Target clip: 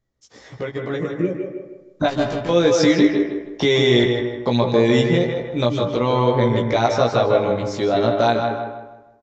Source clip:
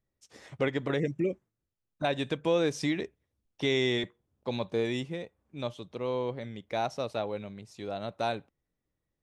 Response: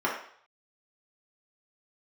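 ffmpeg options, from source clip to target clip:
-filter_complex "[0:a]equalizer=f=2600:w=5.2:g=-6.5,asplit=2[s0][s1];[s1]acompressor=threshold=0.0141:ratio=6,volume=0.891[s2];[s0][s2]amix=inputs=2:normalize=0,alimiter=limit=0.1:level=0:latency=1:release=271,dynaudnorm=f=640:g=5:m=3.98,asettb=1/sr,asplit=3[s3][s4][s5];[s3]atrim=end=2.084[s6];[s4]atrim=start=2.08:end=2.49,asetpts=PTS-STARTPTS,afade=t=in:d=0.004:c=qsin,afade=t=out:st=0.406:d=0.004:c=qsin,volume=25.1,asoftclip=hard,volume=0.0398[s7];[s5]atrim=start=2.486[s8];[s6][s7]acrossfade=d=0.004:c1=hsin:c2=qsin[s9];[s9][s8]acrossfade=d=0.004:c1=qsin:c2=hsin,asplit=2[s10][s11];[s11]adelay=17,volume=0.708[s12];[s10][s12]amix=inputs=2:normalize=0,asplit=2[s13][s14];[s14]adelay=157,lowpass=f=3100:p=1,volume=0.531,asplit=2[s15][s16];[s16]adelay=157,lowpass=f=3100:p=1,volume=0.38,asplit=2[s17][s18];[s18]adelay=157,lowpass=f=3100:p=1,volume=0.38,asplit=2[s19][s20];[s20]adelay=157,lowpass=f=3100:p=1,volume=0.38,asplit=2[s21][s22];[s22]adelay=157,lowpass=f=3100:p=1,volume=0.38[s23];[s13][s15][s17][s19][s21][s23]amix=inputs=6:normalize=0,asplit=2[s24][s25];[1:a]atrim=start_sample=2205,adelay=145[s26];[s25][s26]afir=irnorm=-1:irlink=0,volume=0.126[s27];[s24][s27]amix=inputs=2:normalize=0,aresample=16000,aresample=44100"

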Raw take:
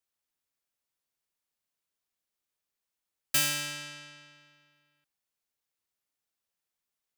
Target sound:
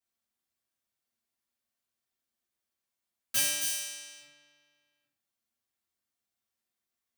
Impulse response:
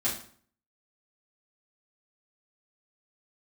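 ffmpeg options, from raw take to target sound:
-filter_complex "[0:a]asplit=3[s0][s1][s2];[s0]afade=t=out:st=3.6:d=0.02[s3];[s1]aemphasis=mode=production:type=bsi,afade=t=in:st=3.6:d=0.02,afade=t=out:st=4.19:d=0.02[s4];[s2]afade=t=in:st=4.19:d=0.02[s5];[s3][s4][s5]amix=inputs=3:normalize=0[s6];[1:a]atrim=start_sample=2205[s7];[s6][s7]afir=irnorm=-1:irlink=0,volume=0.422"

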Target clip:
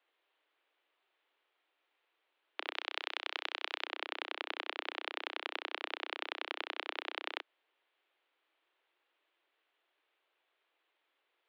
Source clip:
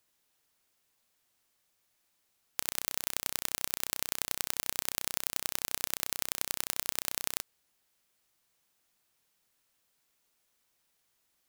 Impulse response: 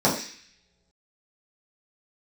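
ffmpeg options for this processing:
-filter_complex "[0:a]asettb=1/sr,asplit=3[s0][s1][s2];[s0]atrim=end=2.744[s3];[s1]atrim=start=2.74:end=3.85,asetpts=PTS-STARTPTS,afade=t=in:d=0.004:c=qsin,afade=t=out:st=1.106:d=0.004:c=qsin,aemphasis=mode=production:type=bsi[s4];[s2]atrim=start=3.846[s5];[s3][s4]acrossfade=d=0.004:c1=hsin:c2=qsin[s6];[s6][s5]acrossfade=d=0.004:c1=qsin:c2=hsin,highpass=f=150:t=q:w=0.5412,highpass=f=150:t=q:w=1.307,lowpass=f=3300:t=q:w=0.5176,lowpass=f=3300:t=q:w=0.7071,lowpass=f=3300:t=q:w=1.932,afreqshift=160,volume=1.33"

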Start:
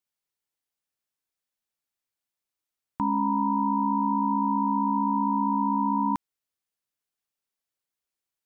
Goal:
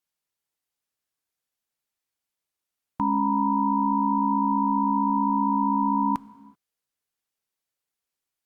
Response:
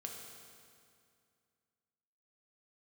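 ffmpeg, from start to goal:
-filter_complex "[0:a]asplit=2[s0][s1];[1:a]atrim=start_sample=2205,afade=t=out:st=0.44:d=0.01,atrim=end_sample=19845[s2];[s1][s2]afir=irnorm=-1:irlink=0,volume=0.422[s3];[s0][s3]amix=inputs=2:normalize=0" -ar 48000 -c:a libopus -b:a 64k

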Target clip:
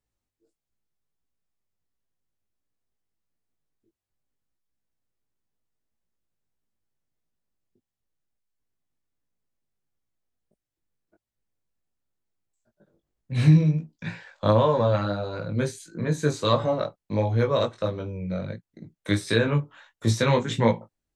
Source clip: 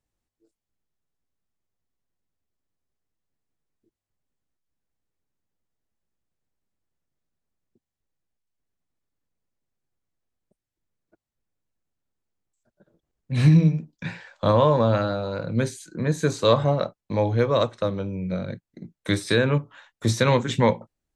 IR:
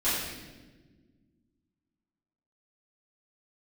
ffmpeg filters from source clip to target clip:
-af "flanger=delay=17.5:depth=3:speed=1.5,volume=1.12"

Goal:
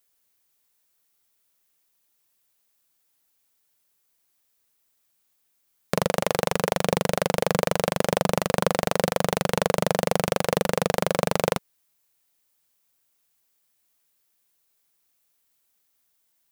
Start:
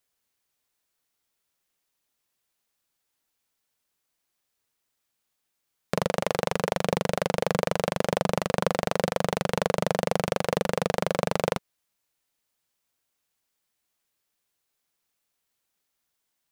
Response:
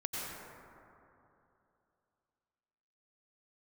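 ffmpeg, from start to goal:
-af "highshelf=f=9300:g=9.5,volume=1.33"

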